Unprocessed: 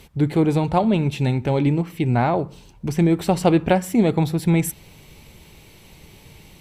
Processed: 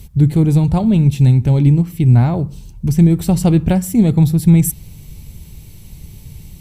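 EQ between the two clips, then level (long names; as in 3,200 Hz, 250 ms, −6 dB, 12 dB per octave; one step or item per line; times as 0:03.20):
bass and treble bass +14 dB, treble +10 dB
low-shelf EQ 180 Hz +7 dB
high-shelf EQ 10,000 Hz +7.5 dB
−5.5 dB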